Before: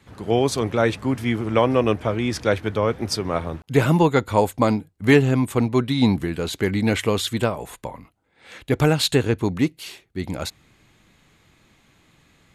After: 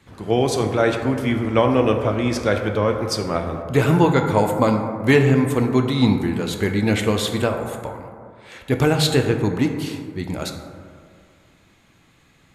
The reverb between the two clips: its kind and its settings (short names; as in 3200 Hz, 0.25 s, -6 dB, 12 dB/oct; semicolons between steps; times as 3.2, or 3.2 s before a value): plate-style reverb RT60 2.2 s, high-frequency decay 0.3×, DRR 4 dB